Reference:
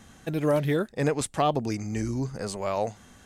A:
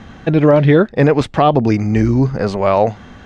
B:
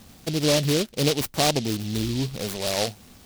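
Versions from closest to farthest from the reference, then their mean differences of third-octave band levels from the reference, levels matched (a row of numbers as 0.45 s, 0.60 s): A, B; 4.5 dB, 7.0 dB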